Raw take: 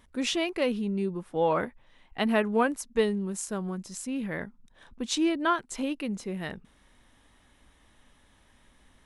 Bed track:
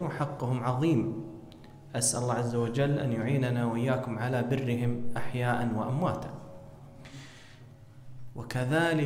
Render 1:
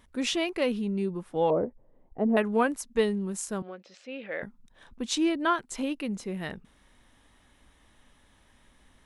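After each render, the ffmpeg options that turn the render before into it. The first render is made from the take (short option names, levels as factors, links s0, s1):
-filter_complex "[0:a]asettb=1/sr,asplit=3[s0][s1][s2];[s0]atrim=end=1.504[s3];[s1]atrim=start=1.5:end=2.37,asetpts=PTS-STARTPTS,afade=t=in:d=0.004:c=qsin,afade=t=out:st=0.866:d=0.004:c=qsin,lowpass=f=500:t=q:w=1.9[s4];[s2]atrim=start=2.366[s5];[s3][s4]acrossfade=d=0.004:c1=hsin:c2=qsin[s6];[s6][s5]acrossfade=d=0.004:c1=qsin:c2=hsin,asettb=1/sr,asplit=3[s7][s8][s9];[s7]atrim=end=3.624[s10];[s8]atrim=start=3.62:end=4.43,asetpts=PTS-STARTPTS,afade=t=in:d=0.004:c=qsin,afade=t=out:st=0.806:d=0.004:c=qsin,highpass=490,equalizer=f=530:t=q:w=4:g=8,equalizer=f=1000:t=q:w=4:g=-10,equalizer=f=2500:t=q:w=4:g=4,lowpass=f=4000:w=0.5412,lowpass=f=4000:w=1.3066[s11];[s9]atrim=start=4.426[s12];[s10][s11]acrossfade=d=0.004:c1=hsin:c2=qsin[s13];[s13][s12]acrossfade=d=0.004:c1=qsin:c2=hsin"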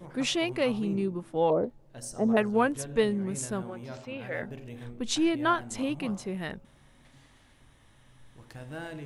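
-filter_complex "[1:a]volume=0.211[s0];[0:a][s0]amix=inputs=2:normalize=0"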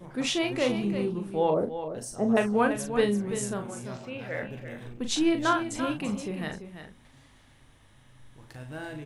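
-filter_complex "[0:a]asplit=2[s0][s1];[s1]adelay=39,volume=0.447[s2];[s0][s2]amix=inputs=2:normalize=0,aecho=1:1:339:0.316"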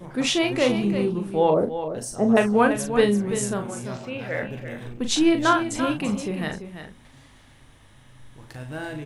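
-af "volume=1.88"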